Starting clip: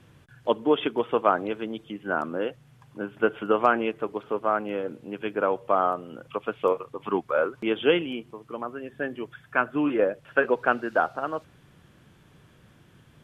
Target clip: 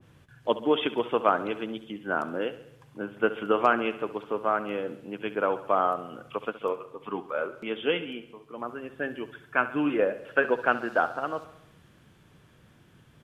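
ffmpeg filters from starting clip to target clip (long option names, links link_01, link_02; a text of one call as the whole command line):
ffmpeg -i in.wav -filter_complex "[0:a]asplit=3[link_01][link_02][link_03];[link_01]afade=type=out:start_time=6.49:duration=0.02[link_04];[link_02]flanger=delay=3.9:depth=1:regen=-70:speed=1.4:shape=triangular,afade=type=in:start_time=6.49:duration=0.02,afade=type=out:start_time=8.56:duration=0.02[link_05];[link_03]afade=type=in:start_time=8.56:duration=0.02[link_06];[link_04][link_05][link_06]amix=inputs=3:normalize=0,aecho=1:1:68|136|204|272|340|408:0.178|0.103|0.0598|0.0347|0.0201|0.0117,adynamicequalizer=threshold=0.0178:dfrequency=1700:dqfactor=0.7:tfrequency=1700:tqfactor=0.7:attack=5:release=100:ratio=0.375:range=2:mode=boostabove:tftype=highshelf,volume=-2dB" out.wav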